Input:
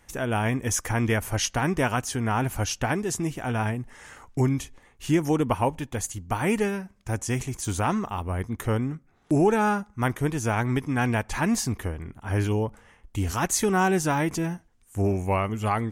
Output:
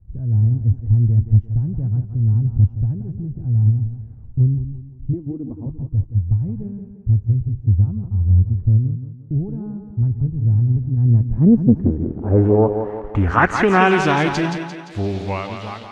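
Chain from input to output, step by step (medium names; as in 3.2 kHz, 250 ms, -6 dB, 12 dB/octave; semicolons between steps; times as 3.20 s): fade out at the end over 2.59 s; 5.13–5.66 s: resonant low shelf 180 Hz -13 dB, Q 3; in parallel at +2 dB: compression, threshold -37 dBFS, peak gain reduction 22 dB; on the sum: word length cut 8-bit, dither none; low-pass sweep 100 Hz -> 3.9 kHz, 10.94–14.15 s; on a send: thinning echo 173 ms, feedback 52%, high-pass 150 Hz, level -7 dB; on the sum: loudspeaker Doppler distortion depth 0.39 ms; trim +7 dB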